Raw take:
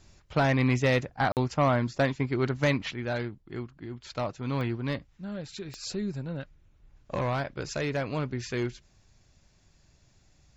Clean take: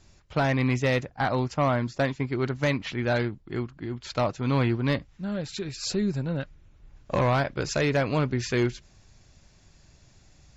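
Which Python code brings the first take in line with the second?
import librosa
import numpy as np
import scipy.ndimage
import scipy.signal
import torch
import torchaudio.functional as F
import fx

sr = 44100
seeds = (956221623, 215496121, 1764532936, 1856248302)

y = fx.fix_declick_ar(x, sr, threshold=10.0)
y = fx.fix_interpolate(y, sr, at_s=(1.32,), length_ms=48.0)
y = fx.fix_level(y, sr, at_s=2.91, step_db=6.0)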